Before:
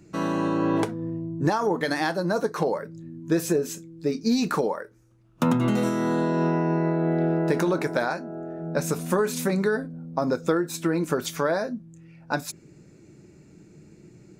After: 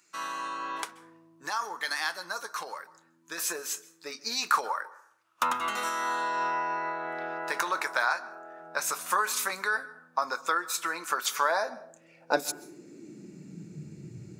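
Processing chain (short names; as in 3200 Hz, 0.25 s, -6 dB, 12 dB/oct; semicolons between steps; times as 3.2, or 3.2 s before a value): bell 810 Hz -13.5 dB 2.9 oct, from 3.38 s -5.5 dB; plate-style reverb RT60 0.65 s, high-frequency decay 0.5×, pre-delay 0.12 s, DRR 18.5 dB; high-pass sweep 1100 Hz -> 93 Hz, 11.3–14.32; gain +3 dB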